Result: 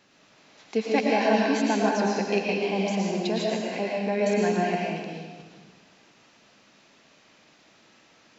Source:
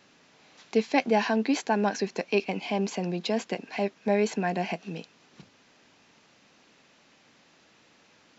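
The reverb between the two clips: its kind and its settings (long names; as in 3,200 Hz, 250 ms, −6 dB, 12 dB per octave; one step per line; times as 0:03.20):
comb and all-pass reverb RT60 1.4 s, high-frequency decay 0.95×, pre-delay 75 ms, DRR −3 dB
level −2 dB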